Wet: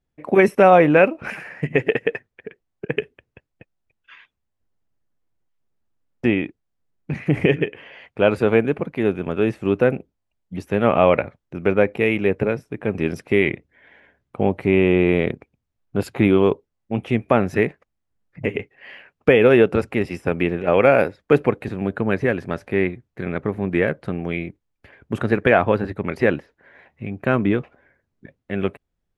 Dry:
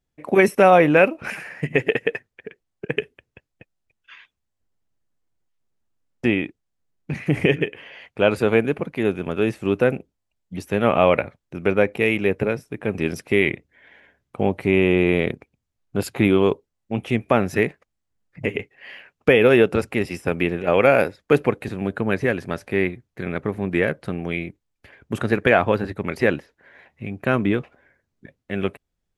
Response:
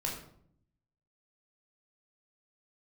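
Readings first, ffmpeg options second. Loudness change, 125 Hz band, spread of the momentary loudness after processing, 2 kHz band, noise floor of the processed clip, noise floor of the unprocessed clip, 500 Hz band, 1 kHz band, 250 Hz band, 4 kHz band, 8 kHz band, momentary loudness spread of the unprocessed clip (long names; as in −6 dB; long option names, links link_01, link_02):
+1.0 dB, +1.5 dB, 16 LU, −0.5 dB, −77 dBFS, −79 dBFS, +1.5 dB, +1.0 dB, +1.5 dB, −2.5 dB, can't be measured, 16 LU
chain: -af "highshelf=frequency=3800:gain=-10,volume=1.5dB"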